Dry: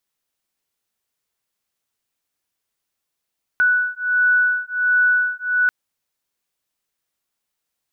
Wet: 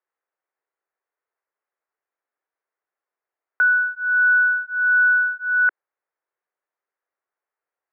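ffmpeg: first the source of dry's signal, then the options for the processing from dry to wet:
-f lavfi -i "aevalsrc='0.126*(sin(2*PI*1480*t)+sin(2*PI*1481.4*t))':d=2.09:s=44100"
-af "asuperpass=centerf=840:order=8:qfactor=0.53"

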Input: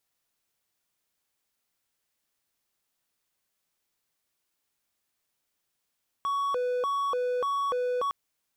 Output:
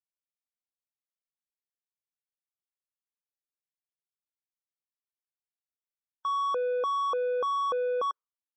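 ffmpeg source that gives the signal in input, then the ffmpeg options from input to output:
-f lavfi -i "aevalsrc='0.0668*(1-4*abs(mod((808*t+312/1.7*(0.5-abs(mod(1.7*t,1)-0.5)))+0.25,1)-0.5))':d=1.86:s=44100"
-af "afftdn=nr=34:nf=-44"

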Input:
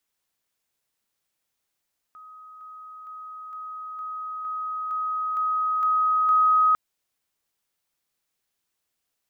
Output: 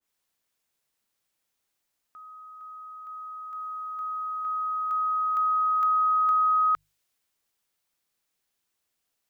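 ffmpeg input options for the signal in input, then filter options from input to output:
-f lavfi -i "aevalsrc='pow(10,(-42.5+3*floor(t/0.46))/20)*sin(2*PI*1260*t)':d=4.6:s=44100"
-af "bandreject=f=50:t=h:w=6,bandreject=f=100:t=h:w=6,bandreject=f=150:t=h:w=6,acompressor=threshold=0.0794:ratio=6,adynamicequalizer=threshold=0.0112:dfrequency=1500:dqfactor=0.7:tfrequency=1500:tqfactor=0.7:attack=5:release=100:ratio=0.375:range=2:mode=boostabove:tftype=highshelf"

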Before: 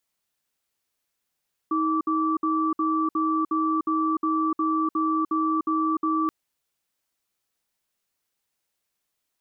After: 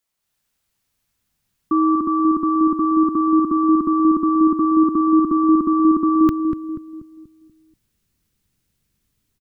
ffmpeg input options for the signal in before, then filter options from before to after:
-f lavfi -i "aevalsrc='0.0668*(sin(2*PI*317*t)+sin(2*PI*1160*t))*clip(min(mod(t,0.36),0.3-mod(t,0.36))/0.005,0,1)':d=4.58:s=44100"
-filter_complex "[0:a]asubboost=boost=11.5:cutoff=200,dynaudnorm=f=170:g=3:m=2,asplit=2[s0][s1];[s1]adelay=241,lowpass=f=820:p=1,volume=0.531,asplit=2[s2][s3];[s3]adelay=241,lowpass=f=820:p=1,volume=0.46,asplit=2[s4][s5];[s5]adelay=241,lowpass=f=820:p=1,volume=0.46,asplit=2[s6][s7];[s7]adelay=241,lowpass=f=820:p=1,volume=0.46,asplit=2[s8][s9];[s9]adelay=241,lowpass=f=820:p=1,volume=0.46,asplit=2[s10][s11];[s11]adelay=241,lowpass=f=820:p=1,volume=0.46[s12];[s0][s2][s4][s6][s8][s10][s12]amix=inputs=7:normalize=0"

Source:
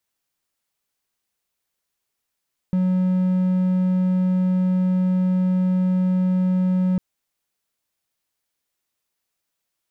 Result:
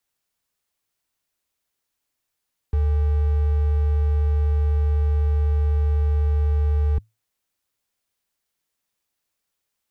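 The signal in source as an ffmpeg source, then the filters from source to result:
-f lavfi -i "aevalsrc='0.188*(1-4*abs(mod(184*t+0.25,1)-0.5))':d=4.25:s=44100"
-af "afreqshift=-110"

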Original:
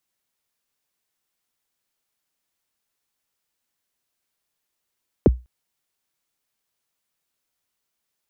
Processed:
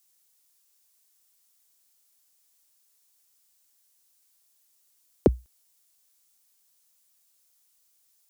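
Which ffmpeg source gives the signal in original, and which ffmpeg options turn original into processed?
-f lavfi -i "aevalsrc='0.501*pow(10,-3*t/0.25)*sin(2*PI*(550*0.026/log(61/550)*(exp(log(61/550)*min(t,0.026)/0.026)-1)+61*max(t-0.026,0)))':d=0.2:s=44100"
-af "bass=f=250:g=-6,treble=f=4000:g=14"

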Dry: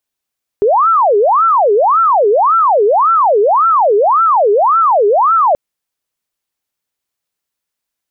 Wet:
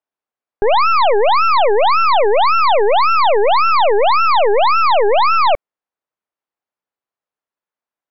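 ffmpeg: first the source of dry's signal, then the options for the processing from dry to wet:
-f lavfi -i "aevalsrc='0.447*sin(2*PI*(876*t-474/(2*PI*1.8)*sin(2*PI*1.8*t)))':d=4.93:s=44100"
-af "lowpass=1100,aemphasis=mode=production:type=riaa,aeval=exprs='0.376*(cos(1*acos(clip(val(0)/0.376,-1,1)))-cos(1*PI/2))+0.0944*(cos(4*acos(clip(val(0)/0.376,-1,1)))-cos(4*PI/2))':c=same"

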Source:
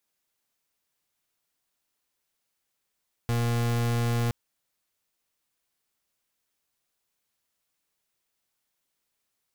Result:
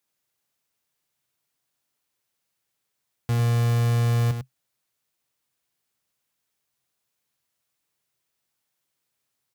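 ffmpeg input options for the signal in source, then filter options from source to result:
-f lavfi -i "aevalsrc='0.0531*(2*lt(mod(118*t,1),0.38)-1)':d=1.02:s=44100"
-filter_complex "[0:a]highpass=52,equalizer=f=130:t=o:w=0.35:g=8,asplit=2[s0][s1];[s1]aecho=0:1:100:0.398[s2];[s0][s2]amix=inputs=2:normalize=0"

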